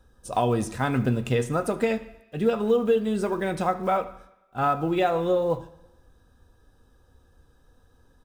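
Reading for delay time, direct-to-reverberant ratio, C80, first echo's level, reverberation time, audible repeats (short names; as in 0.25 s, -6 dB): 75 ms, 8.0 dB, 16.5 dB, -21.0 dB, 0.95 s, 1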